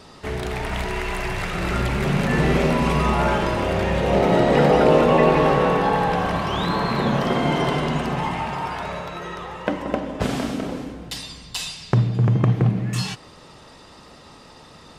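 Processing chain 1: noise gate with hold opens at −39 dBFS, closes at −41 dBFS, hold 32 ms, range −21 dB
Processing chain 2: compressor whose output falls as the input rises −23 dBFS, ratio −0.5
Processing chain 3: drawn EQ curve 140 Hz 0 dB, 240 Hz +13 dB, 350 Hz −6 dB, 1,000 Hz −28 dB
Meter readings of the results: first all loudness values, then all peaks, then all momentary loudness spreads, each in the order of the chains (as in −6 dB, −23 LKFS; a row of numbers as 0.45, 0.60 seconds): −21.0, −24.5, −18.5 LKFS; −2.5, −8.5, −3.0 dBFS; 14, 14, 15 LU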